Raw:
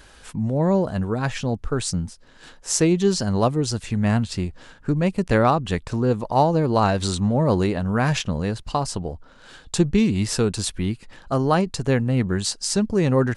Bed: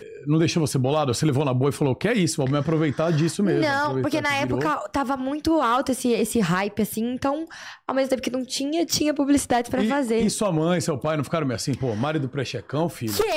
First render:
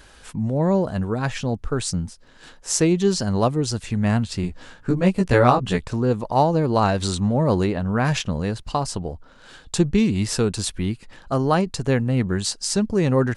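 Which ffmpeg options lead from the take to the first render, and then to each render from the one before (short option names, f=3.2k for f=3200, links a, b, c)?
-filter_complex "[0:a]asettb=1/sr,asplit=3[a][b][c];[a]atrim=end=4.424[d];[b]atrim=start=4.42:end=5.87,asetpts=PTS-STARTPTS,afade=t=in:d=0.004:c=qsin,afade=t=out:st=1.446:d=0.004:c=qsin,asplit=2[e][f];[f]adelay=16,volume=-2dB[g];[e][g]amix=inputs=2:normalize=0,atrim=end_sample=63945[h];[c]atrim=start=5.866[i];[d][h]acrossfade=d=0.004:c1=hsin:c2=qsin[j];[j][i]acrossfade=d=0.004:c1=qsin:c2=hsin,asettb=1/sr,asplit=3[k][l][m];[k]atrim=end=7.654[n];[l]atrim=start=7.65:end=8.05,asetpts=PTS-STARTPTS,afade=t=in:d=0.004:c=qsin,afade=t=out:st=0.396:d=0.004:c=qsin,highshelf=f=7.1k:g=-11[o];[m]atrim=start=8.046[p];[n][o]acrossfade=d=0.004:c1=hsin:c2=qsin[q];[q][p]acrossfade=d=0.004:c1=qsin:c2=hsin"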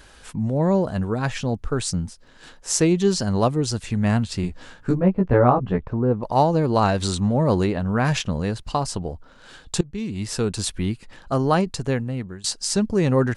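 -filter_complex "[0:a]asettb=1/sr,asplit=3[a][b][c];[a]atrim=end=4.974[d];[b]atrim=start=4.97:end=6.23,asetpts=PTS-STARTPTS,afade=t=in:d=0.004:c=qsin,afade=t=out:st=1.256:d=0.004:c=qsin,lowpass=1.2k[e];[c]atrim=start=6.226[f];[d][e]acrossfade=d=0.004:c1=hsin:c2=qsin[g];[g][f]acrossfade=d=0.004:c1=qsin:c2=hsin,asplit=3[h][i][j];[h]atrim=end=9.81,asetpts=PTS-STARTPTS,afade=t=out:st=9.806:d=0.004:c=hsin:silence=0.0749894[k];[i]atrim=start=9.81:end=12.44,asetpts=PTS-STARTPTS,afade=t=in:d=0.84:silence=0.0749894,afade=t=out:st=1.86:d=0.77:silence=0.1[l];[j]atrim=start=12.44,asetpts=PTS-STARTPTS,afade=t=in:d=0.004:c=hsin:silence=0.1[m];[k][l][m]concat=n=3:v=0:a=1"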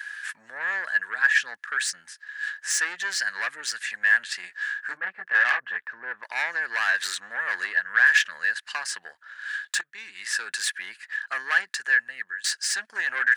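-af "asoftclip=type=tanh:threshold=-19.5dB,highpass=f=1.7k:t=q:w=15"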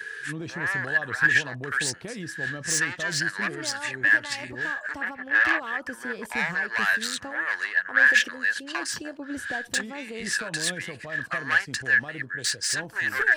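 -filter_complex "[1:a]volume=-15.5dB[a];[0:a][a]amix=inputs=2:normalize=0"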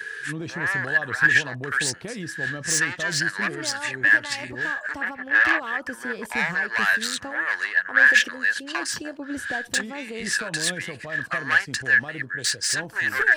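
-af "volume=2.5dB"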